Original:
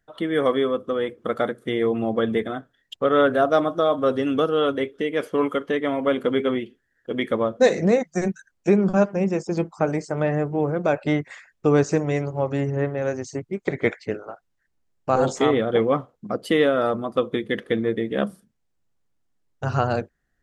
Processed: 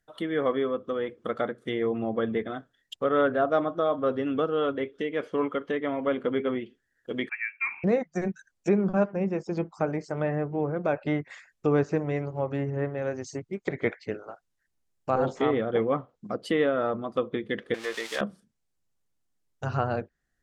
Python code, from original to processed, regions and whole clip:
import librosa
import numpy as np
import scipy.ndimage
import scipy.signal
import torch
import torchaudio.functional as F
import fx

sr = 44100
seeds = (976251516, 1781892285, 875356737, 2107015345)

y = fx.chain(x, sr, fx.highpass(hz=370.0, slope=24),
    fx.fixed_phaser(hz=1000.0, stages=4),
    fx.freq_invert(carrier_hz=2900), at=(7.29, 7.84))
y = fx.chain(y, sr, fx.crossing_spikes(level_db=-19.0),
    fx.highpass(hz=840.0, slope=12),
    fx.leveller(passes=2), at=(17.74, 18.21))
y = fx.env_lowpass_down(y, sr, base_hz=2300.0, full_db=-19.5)
y = fx.high_shelf(y, sr, hz=4100.0, db=7.5)
y = F.gain(torch.from_numpy(y), -5.5).numpy()